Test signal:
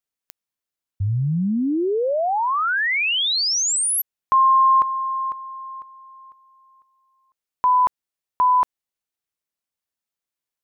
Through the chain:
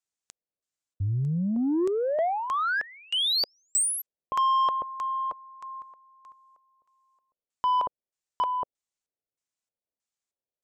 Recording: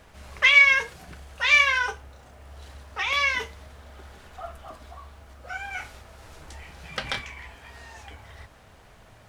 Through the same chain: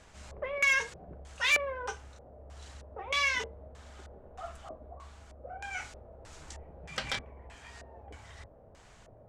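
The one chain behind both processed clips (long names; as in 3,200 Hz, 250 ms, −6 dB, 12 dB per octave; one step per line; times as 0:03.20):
auto-filter low-pass square 1.6 Hz 560–7,500 Hz
soft clipping −15 dBFS
level −4.5 dB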